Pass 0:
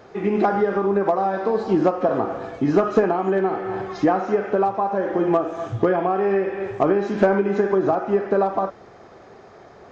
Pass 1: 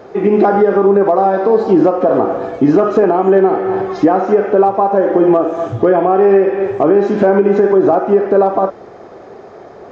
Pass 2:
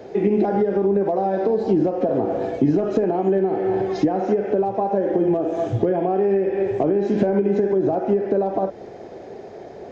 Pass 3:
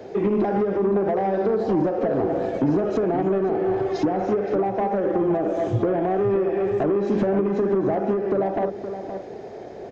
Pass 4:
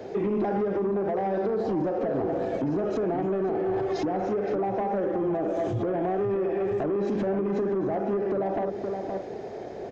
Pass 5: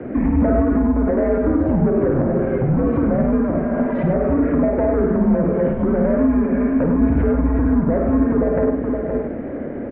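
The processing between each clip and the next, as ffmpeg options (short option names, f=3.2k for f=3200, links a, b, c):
-af "equalizer=f=440:w=0.54:g=8.5,alimiter=level_in=4.5dB:limit=-1dB:release=50:level=0:latency=1,volume=-1dB"
-filter_complex "[0:a]equalizer=f=1.2k:w=2.3:g=-14,acrossover=split=180[a][b];[b]acompressor=threshold=-17dB:ratio=6[c];[a][c]amix=inputs=2:normalize=0,volume=-1dB"
-filter_complex "[0:a]acrossover=split=150[a][b];[b]asoftclip=type=tanh:threshold=-16.5dB[c];[a][c]amix=inputs=2:normalize=0,asplit=2[d][e];[e]adelay=519,volume=-9dB,highshelf=f=4k:g=-11.7[f];[d][f]amix=inputs=2:normalize=0"
-af "alimiter=limit=-21dB:level=0:latency=1:release=49"
-af "highpass=f=170:t=q:w=0.5412,highpass=f=170:t=q:w=1.307,lowpass=f=2.4k:t=q:w=0.5176,lowpass=f=2.4k:t=q:w=0.7071,lowpass=f=2.4k:t=q:w=1.932,afreqshift=-140,aecho=1:1:52.48|102:0.447|0.447,volume=8.5dB"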